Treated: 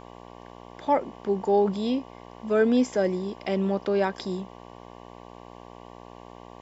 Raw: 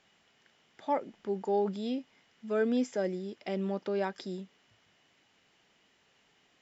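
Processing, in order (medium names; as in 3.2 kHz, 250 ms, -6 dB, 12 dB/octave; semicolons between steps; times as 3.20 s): mains buzz 60 Hz, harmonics 19, -53 dBFS 0 dB/octave; trim +7.5 dB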